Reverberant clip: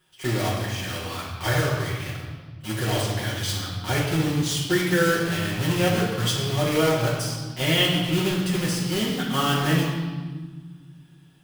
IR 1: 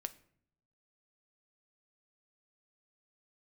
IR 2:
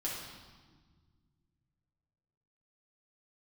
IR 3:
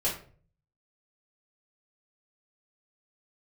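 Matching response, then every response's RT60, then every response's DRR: 2; 0.65, 1.5, 0.45 seconds; 10.5, −6.0, −8.5 decibels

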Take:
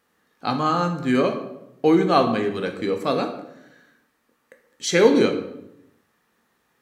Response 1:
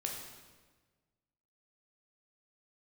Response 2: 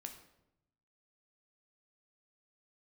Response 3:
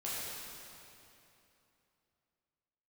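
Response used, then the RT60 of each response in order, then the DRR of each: 2; 1.4, 0.85, 3.0 seconds; −0.5, 4.5, −9.0 decibels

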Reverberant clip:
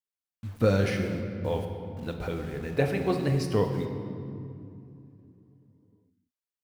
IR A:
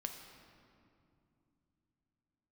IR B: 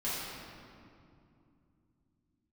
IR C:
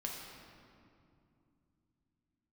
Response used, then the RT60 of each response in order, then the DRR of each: A; 2.6, 2.6, 2.6 seconds; 4.0, −11.0, −1.5 decibels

